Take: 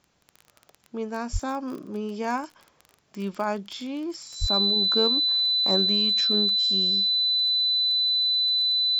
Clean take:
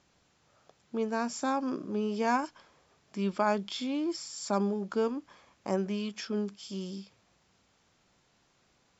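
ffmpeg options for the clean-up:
-filter_complex "[0:a]adeclick=t=4,bandreject=f=4k:w=30,asplit=3[a][b][c];[a]afade=t=out:st=1.32:d=0.02[d];[b]highpass=f=140:w=0.5412,highpass=f=140:w=1.3066,afade=t=in:st=1.32:d=0.02,afade=t=out:st=1.44:d=0.02[e];[c]afade=t=in:st=1.44:d=0.02[f];[d][e][f]amix=inputs=3:normalize=0,asplit=3[g][h][i];[g]afade=t=out:st=4.4:d=0.02[j];[h]highpass=f=140:w=0.5412,highpass=f=140:w=1.3066,afade=t=in:st=4.4:d=0.02,afade=t=out:st=4.52:d=0.02[k];[i]afade=t=in:st=4.52:d=0.02[l];[j][k][l]amix=inputs=3:normalize=0,asetnsamples=n=441:p=0,asendcmd='4.76 volume volume -3.5dB',volume=0dB"

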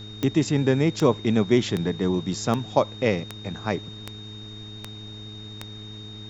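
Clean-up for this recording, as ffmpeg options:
-af "adeclick=t=4,bandreject=f=106:t=h:w=4,bandreject=f=212:t=h:w=4,bandreject=f=318:t=h:w=4,bandreject=f=424:t=h:w=4,bandreject=f=3.7k:w=30,agate=range=-21dB:threshold=-31dB"

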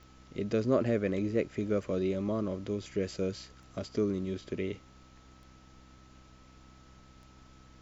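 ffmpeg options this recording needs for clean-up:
-af "adeclick=t=4,bandreject=f=64.3:t=h:w=4,bandreject=f=128.6:t=h:w=4,bandreject=f=192.9:t=h:w=4,bandreject=f=257.2:t=h:w=4,bandreject=f=321.5:t=h:w=4,bandreject=f=1.3k:w=30,agate=range=-21dB:threshold=-49dB"

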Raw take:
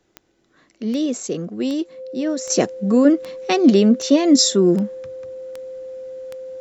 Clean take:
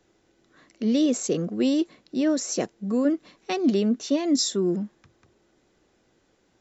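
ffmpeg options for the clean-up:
-af "adeclick=t=4,bandreject=f=520:w=30,asetnsamples=n=441:p=0,asendcmd='2.5 volume volume -9dB',volume=0dB"

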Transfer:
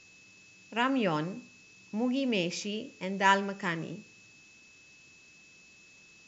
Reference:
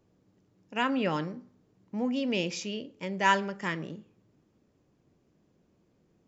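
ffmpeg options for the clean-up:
-af "bandreject=f=2.6k:w=30,afftdn=nr=12:nf=-57"

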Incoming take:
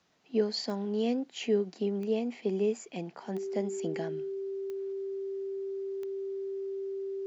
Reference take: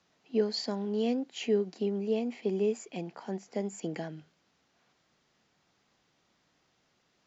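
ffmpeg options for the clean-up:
-af "adeclick=t=4,bandreject=f=390:w=30"

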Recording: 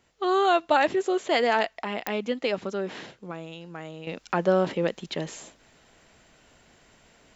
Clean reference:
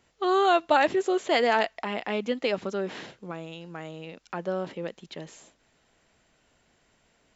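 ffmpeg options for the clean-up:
-af "adeclick=t=4,asetnsamples=n=441:p=0,asendcmd='4.07 volume volume -8.5dB',volume=0dB"

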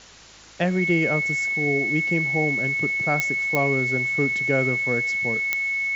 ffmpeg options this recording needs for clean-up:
-af "adeclick=t=4,bandreject=f=53.2:t=h:w=4,bandreject=f=106.4:t=h:w=4,bandreject=f=159.6:t=h:w=4,bandreject=f=212.8:t=h:w=4,bandreject=f=266:t=h:w=4,bandreject=f=2.2k:w=30,afwtdn=0.0063"

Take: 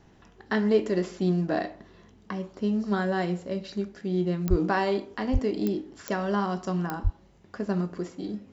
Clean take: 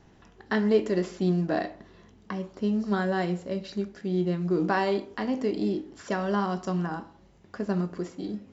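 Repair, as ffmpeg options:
-filter_complex "[0:a]adeclick=t=4,asplit=3[a][b][c];[a]afade=t=out:st=4.49:d=0.02[d];[b]highpass=f=140:w=0.5412,highpass=f=140:w=1.3066,afade=t=in:st=4.49:d=0.02,afade=t=out:st=4.61:d=0.02[e];[c]afade=t=in:st=4.61:d=0.02[f];[d][e][f]amix=inputs=3:normalize=0,asplit=3[g][h][i];[g]afade=t=out:st=5.32:d=0.02[j];[h]highpass=f=140:w=0.5412,highpass=f=140:w=1.3066,afade=t=in:st=5.32:d=0.02,afade=t=out:st=5.44:d=0.02[k];[i]afade=t=in:st=5.44:d=0.02[l];[j][k][l]amix=inputs=3:normalize=0,asplit=3[m][n][o];[m]afade=t=out:st=7.03:d=0.02[p];[n]highpass=f=140:w=0.5412,highpass=f=140:w=1.3066,afade=t=in:st=7.03:d=0.02,afade=t=out:st=7.15:d=0.02[q];[o]afade=t=in:st=7.15:d=0.02[r];[p][q][r]amix=inputs=3:normalize=0"

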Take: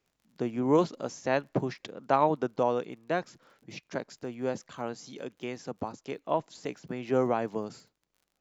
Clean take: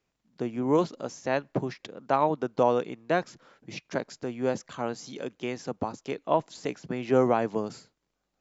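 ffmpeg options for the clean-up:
-af "adeclick=t=4,asetnsamples=n=441:p=0,asendcmd='2.57 volume volume 4dB',volume=0dB"

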